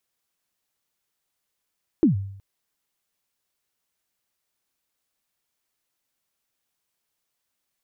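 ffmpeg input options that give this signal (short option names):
-f lavfi -i "aevalsrc='0.282*pow(10,-3*t/0.69)*sin(2*PI*(360*0.124/log(98/360)*(exp(log(98/360)*min(t,0.124)/0.124)-1)+98*max(t-0.124,0)))':d=0.37:s=44100"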